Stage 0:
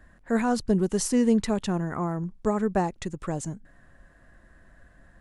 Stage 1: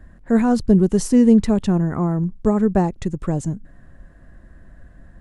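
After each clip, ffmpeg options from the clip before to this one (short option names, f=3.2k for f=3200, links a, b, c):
-af "lowshelf=f=480:g=11.5"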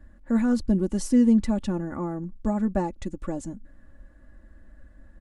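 -af "aecho=1:1:3.5:0.74,volume=-8.5dB"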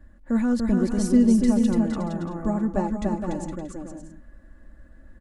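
-af "aecho=1:1:290|464|568.4|631|668.6:0.631|0.398|0.251|0.158|0.1"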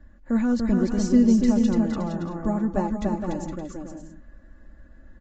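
-ar 16000 -c:a libvorbis -b:a 32k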